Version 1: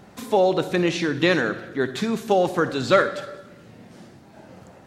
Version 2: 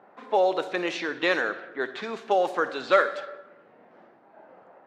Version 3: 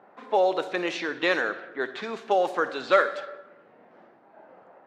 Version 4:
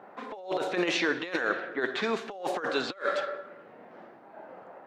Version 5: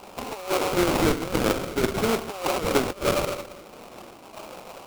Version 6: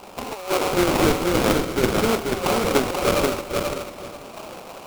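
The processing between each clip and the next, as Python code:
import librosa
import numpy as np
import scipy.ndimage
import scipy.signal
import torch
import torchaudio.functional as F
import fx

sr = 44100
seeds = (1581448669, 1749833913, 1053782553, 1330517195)

y1 = fx.env_lowpass(x, sr, base_hz=1400.0, full_db=-15.5)
y1 = scipy.signal.sosfilt(scipy.signal.butter(2, 550.0, 'highpass', fs=sr, output='sos'), y1)
y1 = fx.high_shelf(y1, sr, hz=3500.0, db=-9.0)
y2 = y1
y3 = fx.over_compress(y2, sr, threshold_db=-29.0, ratio=-0.5)
y4 = fx.sample_hold(y3, sr, seeds[0], rate_hz=1800.0, jitter_pct=20)
y4 = y4 * 10.0 ** (6.0 / 20.0)
y5 = fx.echo_feedback(y4, sr, ms=485, feedback_pct=20, wet_db=-4.0)
y5 = y5 * 10.0 ** (2.5 / 20.0)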